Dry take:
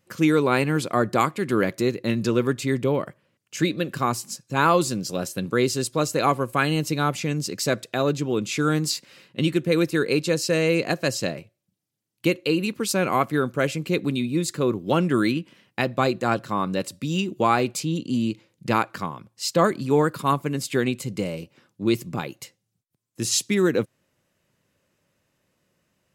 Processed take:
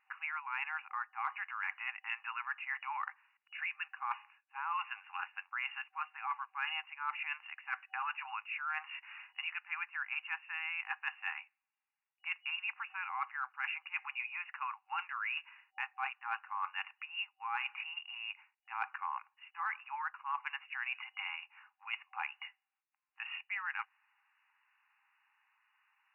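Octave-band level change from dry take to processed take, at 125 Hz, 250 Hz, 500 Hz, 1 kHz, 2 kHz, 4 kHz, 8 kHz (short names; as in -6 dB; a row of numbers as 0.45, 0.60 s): under -40 dB, under -40 dB, under -40 dB, -13.0 dB, -7.5 dB, -15.0 dB, under -40 dB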